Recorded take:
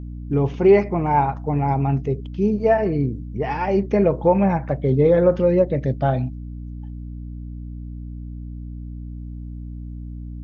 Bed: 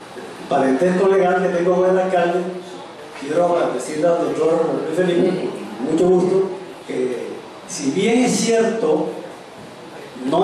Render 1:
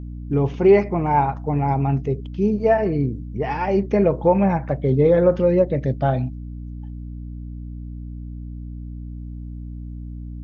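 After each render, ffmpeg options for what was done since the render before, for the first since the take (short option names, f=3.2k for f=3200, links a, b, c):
-af anull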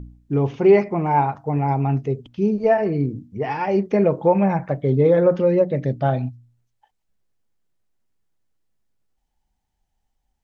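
-af "bandreject=f=60:t=h:w=4,bandreject=f=120:t=h:w=4,bandreject=f=180:t=h:w=4,bandreject=f=240:t=h:w=4,bandreject=f=300:t=h:w=4"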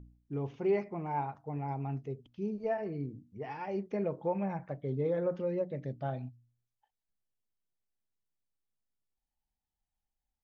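-af "volume=-16dB"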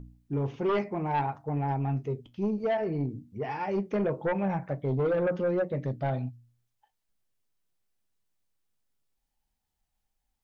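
-af "flanger=delay=7.1:depth=2.4:regen=-65:speed=0.66:shape=sinusoidal,aeval=exprs='0.075*sin(PI/2*2.51*val(0)/0.075)':c=same"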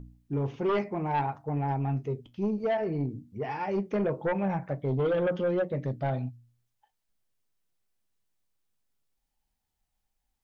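-filter_complex "[0:a]asettb=1/sr,asplit=3[a][b][c];[a]atrim=end=4.984[d];[b]atrim=start=4.98:end=5.67,asetpts=PTS-STARTPTS,afade=t=in:d=0.004:c=qsin,afade=t=out:st=0.686:d=0.004:c=qsin,equalizer=f=3.2k:t=o:w=0.25:g=12.5[e];[c]atrim=start=5.666[f];[d][e]acrossfade=d=0.004:c1=hsin:c2=qsin[g];[g][f]acrossfade=d=0.004:c1=qsin:c2=hsin"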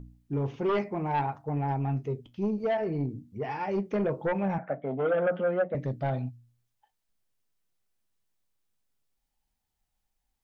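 -filter_complex "[0:a]asettb=1/sr,asplit=3[a][b][c];[a]atrim=end=4.584[d];[b]atrim=start=4.58:end=5.75,asetpts=PTS-STARTPTS,afade=t=in:d=0.004:c=qsin,afade=t=out:st=1.166:d=0.004:c=qsin,highpass=f=180:w=0.5412,highpass=f=180:w=1.3066,equalizer=f=360:t=q:w=4:g=-6,equalizer=f=680:t=q:w=4:g=9,equalizer=f=1k:t=q:w=4:g=-5,equalizer=f=1.4k:t=q:w=4:g=7,lowpass=f=2.7k:w=0.5412,lowpass=f=2.7k:w=1.3066[e];[c]atrim=start=5.746[f];[d][e]acrossfade=d=0.004:c1=hsin:c2=qsin[g];[g][f]acrossfade=d=0.004:c1=qsin:c2=hsin"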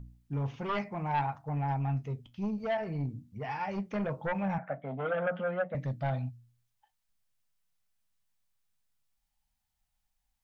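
-af "equalizer=f=370:w=1.5:g=-13"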